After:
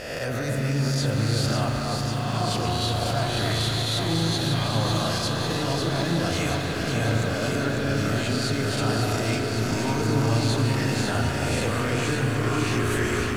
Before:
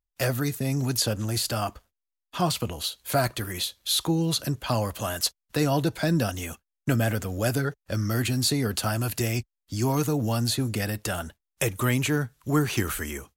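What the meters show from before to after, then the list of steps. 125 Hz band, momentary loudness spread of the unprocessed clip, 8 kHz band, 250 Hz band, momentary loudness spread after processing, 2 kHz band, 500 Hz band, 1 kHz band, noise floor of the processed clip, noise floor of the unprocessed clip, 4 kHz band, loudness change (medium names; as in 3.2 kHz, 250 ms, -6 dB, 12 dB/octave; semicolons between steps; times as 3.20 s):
+3.5 dB, 6 LU, -2.0 dB, +2.0 dB, 2 LU, +4.5 dB, +3.0 dB, +3.5 dB, -27 dBFS, -85 dBFS, +2.5 dB, +2.0 dB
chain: reverse spectral sustain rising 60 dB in 0.64 s; low-pass 7.3 kHz 12 dB/octave; reverse; compression, threshold -33 dBFS, peak gain reduction 15.5 dB; reverse; peak limiter -29.5 dBFS, peak gain reduction 10 dB; on a send: echo whose repeats swap between lows and highs 274 ms, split 1.7 kHz, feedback 88%, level -3.5 dB; on the sum: spring tank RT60 3.1 s, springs 36 ms, chirp 35 ms, DRR 2.5 dB; bit-crushed delay 153 ms, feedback 80%, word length 9-bit, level -15 dB; trim +9 dB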